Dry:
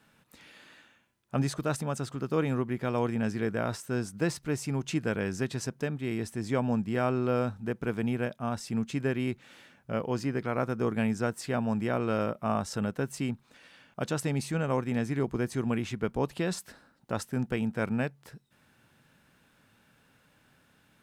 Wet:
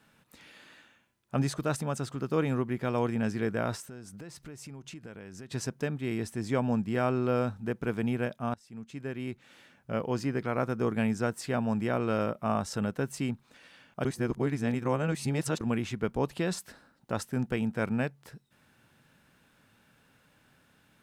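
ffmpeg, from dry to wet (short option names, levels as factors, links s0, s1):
-filter_complex "[0:a]asettb=1/sr,asplit=3[s0][s1][s2];[s0]atrim=end=3.884[s3];[s1]atrim=start=3.88:end=5.52,asetpts=PTS-STARTPTS,afade=t=in:d=0.004:c=qsin,afade=t=out:st=1.636:d=0.004:c=qsin,acompressor=threshold=0.00794:ratio=6:attack=3.2:release=140:knee=1:detection=peak[s4];[s2]atrim=start=5.516[s5];[s3][s4]acrossfade=d=0.004:c1=hsin:c2=qsin[s6];[s6][s5]acrossfade=d=0.004:c1=qsin:c2=hsin,asplit=4[s7][s8][s9][s10];[s7]atrim=end=8.54,asetpts=PTS-STARTPTS,afade=t=out:st=8.536:d=0.004:c=hsin:silence=0.0707946[s11];[s8]atrim=start=8.54:end=14.052,asetpts=PTS-STARTPTS,afade=t=in:d=1.47:silence=0.0707946[s12];[s9]atrim=start=14.048:end=15.612,asetpts=PTS-STARTPTS,areverse[s13];[s10]atrim=start=15.608[s14];[s11][s12]concat=n=2:v=0:a=1[s15];[s15][s13]acrossfade=d=0.004:c1=hsin:c2=hsin[s16];[s16][s14]acrossfade=d=0.004:c1=hsin:c2=hsin"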